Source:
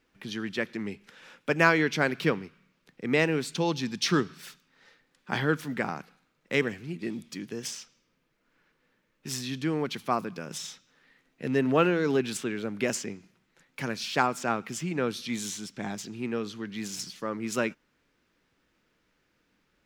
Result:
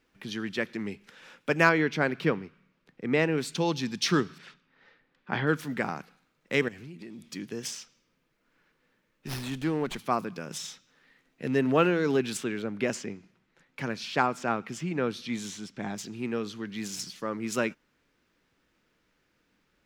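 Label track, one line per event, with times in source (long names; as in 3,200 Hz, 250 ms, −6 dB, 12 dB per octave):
1.690000	3.380000	high-shelf EQ 4,000 Hz −10.5 dB
4.380000	5.470000	low-pass filter 3,000 Hz
6.680000	7.320000	downward compressor, threshold −40 dBFS
9.270000	9.990000	windowed peak hold over 5 samples
12.620000	15.960000	low-pass filter 3,700 Hz 6 dB per octave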